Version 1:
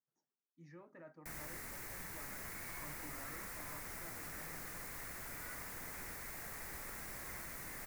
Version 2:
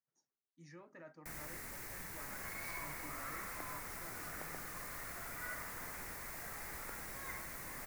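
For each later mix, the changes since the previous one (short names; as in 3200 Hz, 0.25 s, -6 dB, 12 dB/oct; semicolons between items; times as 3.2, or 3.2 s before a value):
speech: remove LPF 1600 Hz 6 dB/oct; second sound +8.0 dB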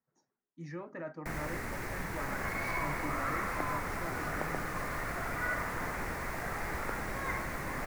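master: remove pre-emphasis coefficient 0.8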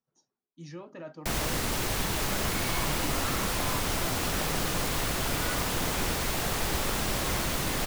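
first sound +8.5 dB; master: add resonant high shelf 2500 Hz +7.5 dB, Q 3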